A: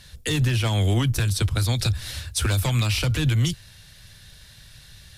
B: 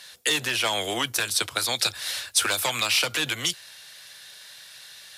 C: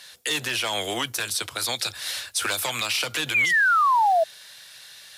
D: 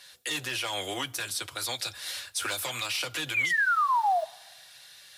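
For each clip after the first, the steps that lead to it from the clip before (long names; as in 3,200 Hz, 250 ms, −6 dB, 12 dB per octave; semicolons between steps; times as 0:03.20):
high-pass filter 580 Hz 12 dB per octave; level +5 dB
sound drawn into the spectrogram fall, 0:03.34–0:04.24, 630–2,500 Hz −18 dBFS; log-companded quantiser 8 bits; brickwall limiter −15 dBFS, peak gain reduction 7 dB
notch comb filter 220 Hz; on a send at −23.5 dB: convolution reverb RT60 1.5 s, pre-delay 3 ms; on the sum: level −4.5 dB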